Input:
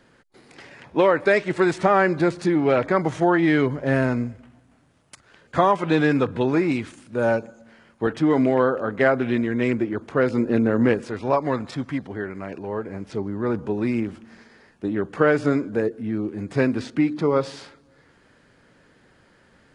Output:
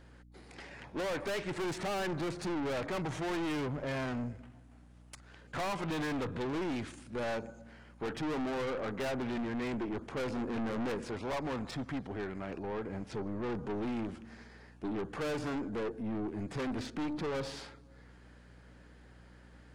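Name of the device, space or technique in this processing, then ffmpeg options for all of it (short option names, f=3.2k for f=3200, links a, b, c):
valve amplifier with mains hum: -af "equalizer=f=800:w=5.6:g=3,aeval=exprs='(tanh(28.2*val(0)+0.3)-tanh(0.3))/28.2':c=same,aeval=exprs='val(0)+0.00251*(sin(2*PI*60*n/s)+sin(2*PI*2*60*n/s)/2+sin(2*PI*3*60*n/s)/3+sin(2*PI*4*60*n/s)/4+sin(2*PI*5*60*n/s)/5)':c=same,volume=-4dB"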